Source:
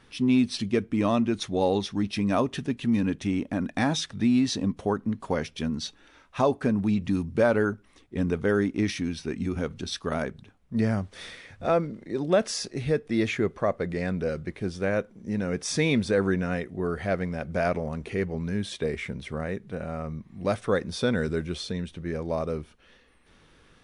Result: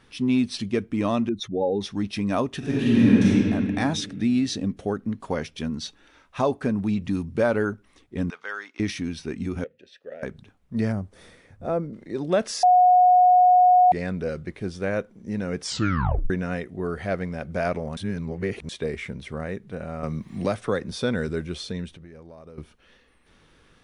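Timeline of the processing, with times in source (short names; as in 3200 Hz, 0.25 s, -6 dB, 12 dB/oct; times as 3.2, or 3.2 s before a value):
1.29–1.81 spectral contrast raised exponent 1.8
2.58–3.3 reverb throw, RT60 2.3 s, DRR -8.5 dB
4.06–5.07 bell 990 Hz -12.5 dB 0.29 oct
8.3–8.8 Chebyshev band-pass 1100–5500 Hz
9.64–10.23 vowel filter e
10.92–11.93 bell 3300 Hz -13 dB 2.9 oct
12.63–13.92 bleep 727 Hz -12 dBFS
15.63 tape stop 0.67 s
17.97–18.69 reverse
20.03–20.92 three-band squash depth 70%
21.88–22.58 compressor 10:1, threshold -41 dBFS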